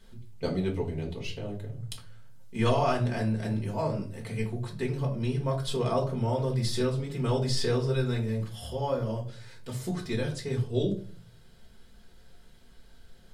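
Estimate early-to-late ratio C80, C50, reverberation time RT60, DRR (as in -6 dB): 15.5 dB, 10.0 dB, 0.45 s, -2.0 dB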